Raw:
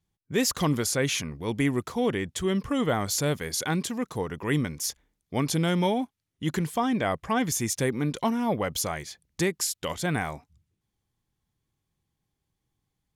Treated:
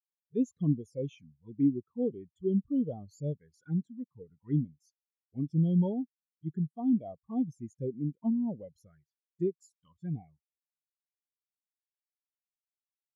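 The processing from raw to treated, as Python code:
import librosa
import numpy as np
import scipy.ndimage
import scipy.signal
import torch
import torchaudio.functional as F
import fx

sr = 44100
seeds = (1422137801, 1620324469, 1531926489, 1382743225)

y = fx.env_flanger(x, sr, rest_ms=3.1, full_db=-22.5)
y = fx.spectral_expand(y, sr, expansion=2.5)
y = F.gain(torch.from_numpy(y), -2.5).numpy()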